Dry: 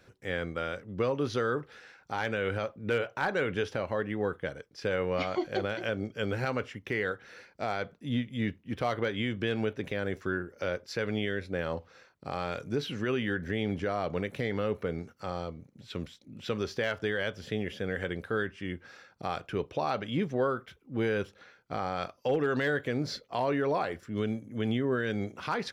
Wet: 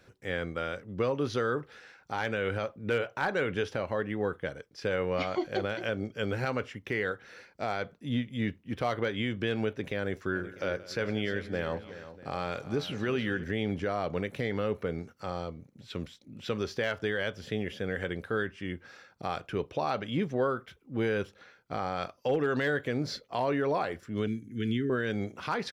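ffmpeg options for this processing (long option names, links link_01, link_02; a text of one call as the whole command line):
ffmpeg -i in.wav -filter_complex "[0:a]asplit=3[link_01][link_02][link_03];[link_01]afade=type=out:start_time=10.34:duration=0.02[link_04];[link_02]aecho=1:1:177|373|646:0.119|0.2|0.106,afade=type=in:start_time=10.34:duration=0.02,afade=type=out:start_time=13.43:duration=0.02[link_05];[link_03]afade=type=in:start_time=13.43:duration=0.02[link_06];[link_04][link_05][link_06]amix=inputs=3:normalize=0,asettb=1/sr,asplit=3[link_07][link_08][link_09];[link_07]atrim=end=24.274[link_10];[link_08]atrim=start=24.27:end=24.9,asetpts=PTS-STARTPTS,afade=type=in:duration=0.004:curve=qsin,afade=type=out:start_time=0.626:duration=0.004:curve=qsin,asuperstop=centerf=780:order=8:qfactor=0.75[link_11];[link_09]atrim=start=24.896[link_12];[link_10][link_11]acrossfade=duration=0.004:curve1=hsin:curve2=qsin[link_13];[link_13][link_12]acrossfade=duration=0.004:curve1=qsin:curve2=hsin" out.wav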